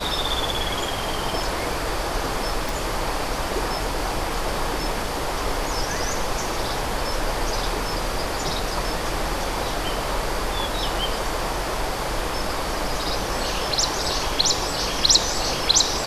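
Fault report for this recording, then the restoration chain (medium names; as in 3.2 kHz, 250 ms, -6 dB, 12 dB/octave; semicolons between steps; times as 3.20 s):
2.69 s: pop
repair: de-click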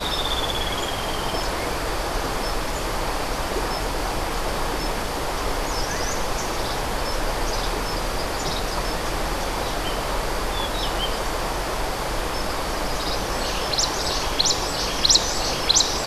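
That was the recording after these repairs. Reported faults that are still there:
nothing left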